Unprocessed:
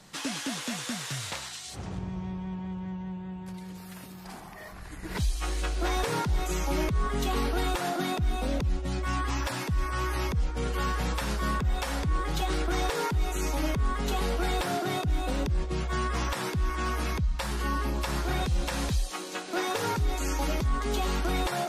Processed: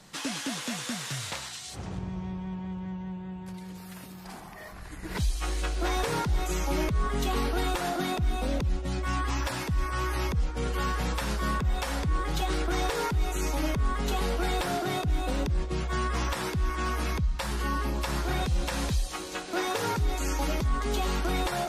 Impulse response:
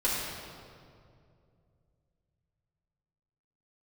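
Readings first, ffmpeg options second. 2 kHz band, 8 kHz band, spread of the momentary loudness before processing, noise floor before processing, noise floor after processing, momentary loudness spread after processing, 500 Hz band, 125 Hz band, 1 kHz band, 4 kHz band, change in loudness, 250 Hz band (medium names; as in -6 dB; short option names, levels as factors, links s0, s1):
0.0 dB, 0.0 dB, 9 LU, -43 dBFS, -43 dBFS, 9 LU, 0.0 dB, 0.0 dB, 0.0 dB, 0.0 dB, 0.0 dB, 0.0 dB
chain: -filter_complex "[0:a]asplit=2[s0][s1];[1:a]atrim=start_sample=2205[s2];[s1][s2]afir=irnorm=-1:irlink=0,volume=0.0224[s3];[s0][s3]amix=inputs=2:normalize=0"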